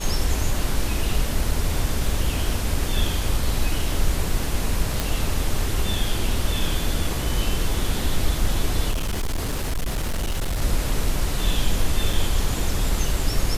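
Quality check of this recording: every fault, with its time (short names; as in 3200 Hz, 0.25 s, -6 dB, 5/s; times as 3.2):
5 pop
8.91–10.62 clipped -20.5 dBFS
12.13 gap 4.3 ms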